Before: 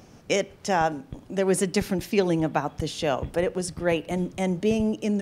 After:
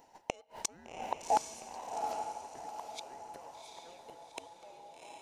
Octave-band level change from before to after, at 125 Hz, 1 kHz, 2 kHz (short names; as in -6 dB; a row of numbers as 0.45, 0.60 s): -32.0, -6.0, -19.0 dB